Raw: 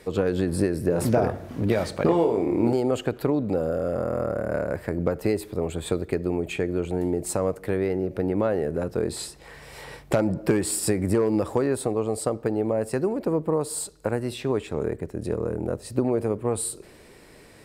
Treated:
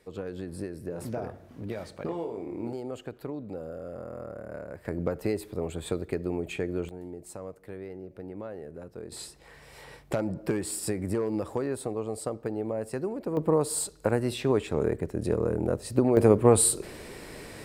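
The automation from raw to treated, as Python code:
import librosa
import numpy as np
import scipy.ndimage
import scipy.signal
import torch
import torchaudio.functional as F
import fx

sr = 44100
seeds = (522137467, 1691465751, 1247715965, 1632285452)

y = fx.gain(x, sr, db=fx.steps((0.0, -13.0), (4.85, -5.0), (6.89, -15.5), (9.12, -7.0), (13.37, 0.5), (16.17, 7.0)))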